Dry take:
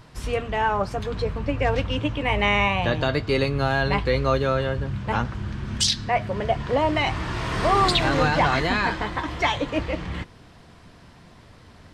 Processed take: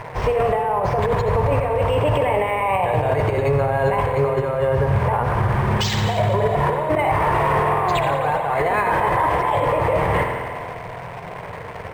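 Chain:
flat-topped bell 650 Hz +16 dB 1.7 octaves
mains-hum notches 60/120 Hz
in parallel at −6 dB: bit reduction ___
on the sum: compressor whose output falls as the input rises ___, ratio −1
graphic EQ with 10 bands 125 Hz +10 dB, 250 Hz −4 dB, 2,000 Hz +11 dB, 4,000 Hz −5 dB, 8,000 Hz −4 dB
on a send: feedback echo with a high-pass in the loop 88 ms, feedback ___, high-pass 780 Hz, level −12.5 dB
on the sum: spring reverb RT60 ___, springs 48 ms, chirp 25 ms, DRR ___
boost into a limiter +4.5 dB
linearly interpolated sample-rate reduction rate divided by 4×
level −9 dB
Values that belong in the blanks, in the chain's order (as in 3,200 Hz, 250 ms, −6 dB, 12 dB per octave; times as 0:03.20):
6 bits, −15 dBFS, 59%, 2.1 s, 5.5 dB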